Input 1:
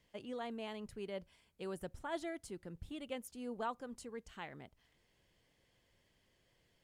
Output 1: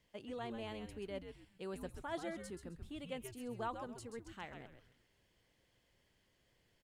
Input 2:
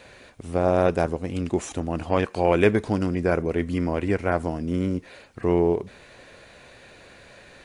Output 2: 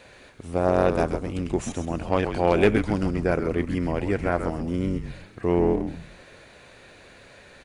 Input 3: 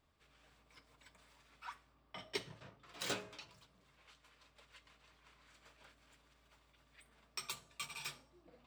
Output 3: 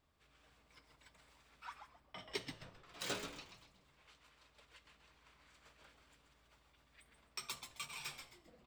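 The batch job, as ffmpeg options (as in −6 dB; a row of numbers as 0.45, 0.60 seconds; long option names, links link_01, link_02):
-filter_complex "[0:a]aeval=exprs='0.562*(cos(1*acos(clip(val(0)/0.562,-1,1)))-cos(1*PI/2))+0.0794*(cos(4*acos(clip(val(0)/0.562,-1,1)))-cos(4*PI/2))+0.0398*(cos(6*acos(clip(val(0)/0.562,-1,1)))-cos(6*PI/2))':channel_layout=same,asplit=5[link_01][link_02][link_03][link_04][link_05];[link_02]adelay=132,afreqshift=-130,volume=-7.5dB[link_06];[link_03]adelay=264,afreqshift=-260,volume=-17.7dB[link_07];[link_04]adelay=396,afreqshift=-390,volume=-27.8dB[link_08];[link_05]adelay=528,afreqshift=-520,volume=-38dB[link_09];[link_01][link_06][link_07][link_08][link_09]amix=inputs=5:normalize=0,volume=-1.5dB"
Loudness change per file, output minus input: −1.0, −0.5, −1.0 LU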